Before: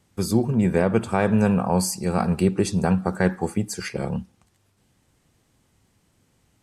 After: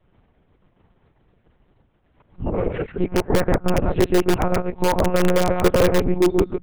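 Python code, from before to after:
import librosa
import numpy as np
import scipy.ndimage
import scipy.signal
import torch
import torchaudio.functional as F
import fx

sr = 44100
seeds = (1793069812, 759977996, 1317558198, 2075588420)

p1 = np.flip(x).copy()
p2 = fx.lowpass(p1, sr, hz=1200.0, slope=6)
p3 = fx.hum_notches(p2, sr, base_hz=50, count=5)
p4 = p3 + 0.65 * np.pad(p3, (int(2.2 * sr / 1000.0), 0))[:len(p3)]
p5 = p4 + fx.echo_single(p4, sr, ms=133, db=-3.5, dry=0)
p6 = fx.transient(p5, sr, attack_db=4, sustain_db=-7)
p7 = fx.lpc_monotone(p6, sr, seeds[0], pitch_hz=180.0, order=8)
p8 = (np.mod(10.0 ** (10.5 / 20.0) * p7 + 1.0, 2.0) - 1.0) / 10.0 ** (10.5 / 20.0)
y = p7 + (p8 * 10.0 ** (-5.5 / 20.0))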